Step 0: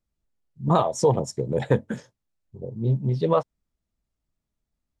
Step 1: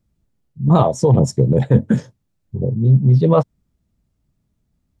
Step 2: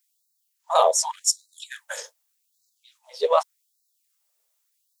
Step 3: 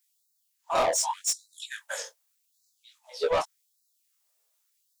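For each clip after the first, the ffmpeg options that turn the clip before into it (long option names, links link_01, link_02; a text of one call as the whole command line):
ffmpeg -i in.wav -af "equalizer=frequency=130:width_type=o:width=2.9:gain=13,areverse,acompressor=threshold=-16dB:ratio=6,areverse,volume=6.5dB" out.wav
ffmpeg -i in.wav -af "crystalizer=i=4:c=0,afftfilt=real='re*gte(b*sr/1024,420*pow(3800/420,0.5+0.5*sin(2*PI*0.85*pts/sr)))':imag='im*gte(b*sr/1024,420*pow(3800/420,0.5+0.5*sin(2*PI*0.85*pts/sr)))':win_size=1024:overlap=0.75,volume=-1.5dB" out.wav
ffmpeg -i in.wav -af "asoftclip=type=tanh:threshold=-20.5dB,flanger=delay=17.5:depth=7.5:speed=0.66,volume=3dB" out.wav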